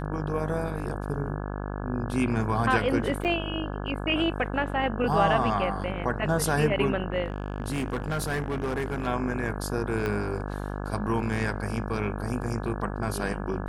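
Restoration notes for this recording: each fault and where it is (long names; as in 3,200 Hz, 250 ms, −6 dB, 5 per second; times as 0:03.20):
mains buzz 50 Hz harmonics 34 −33 dBFS
0:03.24–0:03.25: drop-out 8.3 ms
0:07.24–0:09.08: clipping −24.5 dBFS
0:10.06: click −17 dBFS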